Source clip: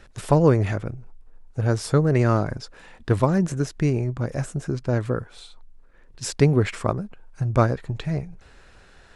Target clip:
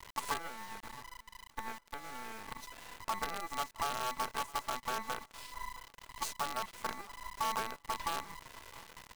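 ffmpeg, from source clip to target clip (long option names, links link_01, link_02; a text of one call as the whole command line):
ffmpeg -i in.wav -filter_complex "[0:a]aeval=exprs='val(0)*sin(2*PI*1000*n/s)':channel_layout=same,acompressor=threshold=-35dB:ratio=16,equalizer=frequency=1000:width_type=o:width=0.35:gain=5.5,asoftclip=type=hard:threshold=-23dB,asettb=1/sr,asplit=3[link_01][link_02][link_03];[link_01]atrim=end=0.384[link_04];[link_02]atrim=start=0.38:end=2.48,asetpts=PTS-STARTPTS,afade=type=in:duration=0.004:curve=qsin,afade=type=out:start_time=2.096:duration=0.004:curve=qsin,highpass=390,equalizer=frequency=620:width_type=q:width=4:gain=-10,equalizer=frequency=1100:width_type=q:width=4:gain=-9,equalizer=frequency=2200:width_type=q:width=4:gain=-4,lowpass=frequency=3300:width=0.5412,lowpass=frequency=3300:width=1.3066[link_05];[link_03]atrim=start=2.476[link_06];[link_04][link_05]acrossfade=duration=0.004:curve1=hsin:curve2=qsin[link_07];[link_07][link_06]acrossfade=duration=0.004:curve1=qsin:curve2=hsin,agate=range=-8dB:threshold=-39dB:ratio=16:detection=peak,aecho=1:1:4.5:0.42,acrusher=bits=6:dc=4:mix=0:aa=0.000001,alimiter=level_in=8dB:limit=-24dB:level=0:latency=1:release=107,volume=-8dB,aecho=1:1:666|1332:0.0841|0.0244,volume=7dB" out.wav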